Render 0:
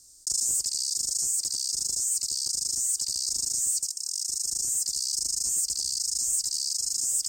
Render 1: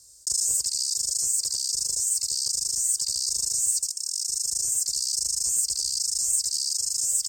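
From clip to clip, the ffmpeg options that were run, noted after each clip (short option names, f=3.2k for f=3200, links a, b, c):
-af "highpass=52,aecho=1:1:1.9:0.71"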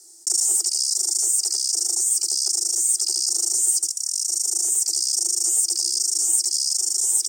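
-af "afreqshift=280,equalizer=f=15k:t=o:w=0.77:g=-2.5,volume=5dB"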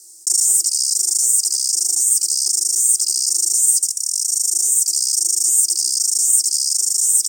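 -af "crystalizer=i=2:c=0,volume=-4dB"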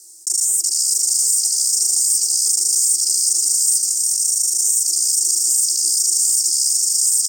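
-filter_complex "[0:a]alimiter=limit=-7.5dB:level=0:latency=1:release=37,asplit=2[a][b];[b]aecho=0:1:370|610.5|766.8|868.4|934.5:0.631|0.398|0.251|0.158|0.1[c];[a][c]amix=inputs=2:normalize=0"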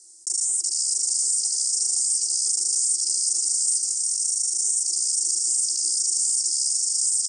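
-af "aresample=22050,aresample=44100,volume=-6dB"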